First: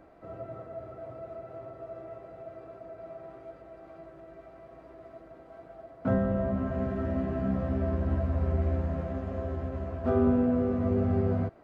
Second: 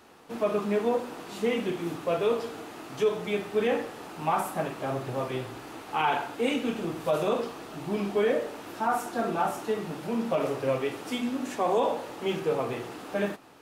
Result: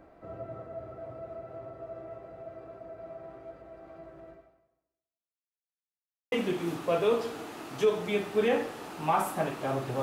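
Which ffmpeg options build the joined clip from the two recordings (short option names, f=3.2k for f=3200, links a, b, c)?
-filter_complex "[0:a]apad=whole_dur=10.02,atrim=end=10.02,asplit=2[a][b];[a]atrim=end=5.84,asetpts=PTS-STARTPTS,afade=t=out:st=4.3:d=1.54:c=exp[c];[b]atrim=start=5.84:end=6.32,asetpts=PTS-STARTPTS,volume=0[d];[1:a]atrim=start=1.51:end=5.21,asetpts=PTS-STARTPTS,afade=t=in:d=0.004:c=hsin[e];[c][d][e]concat=n=3:v=0:a=1"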